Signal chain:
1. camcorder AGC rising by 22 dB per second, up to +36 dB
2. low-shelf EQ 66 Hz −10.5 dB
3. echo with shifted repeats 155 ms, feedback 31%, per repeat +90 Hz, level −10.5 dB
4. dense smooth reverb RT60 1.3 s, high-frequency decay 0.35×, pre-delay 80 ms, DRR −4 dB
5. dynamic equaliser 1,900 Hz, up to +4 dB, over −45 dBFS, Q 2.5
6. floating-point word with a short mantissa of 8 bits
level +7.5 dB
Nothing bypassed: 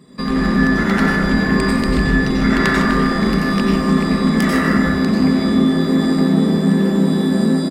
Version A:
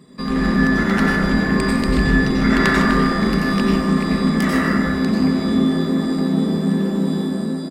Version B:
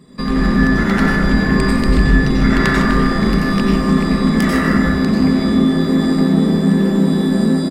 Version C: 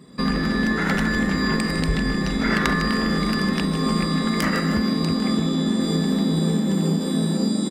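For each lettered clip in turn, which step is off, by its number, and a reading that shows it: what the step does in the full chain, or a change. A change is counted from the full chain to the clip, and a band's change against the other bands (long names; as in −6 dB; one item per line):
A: 1, change in crest factor +2.0 dB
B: 2, 125 Hz band +2.0 dB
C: 4, change in crest factor +5.5 dB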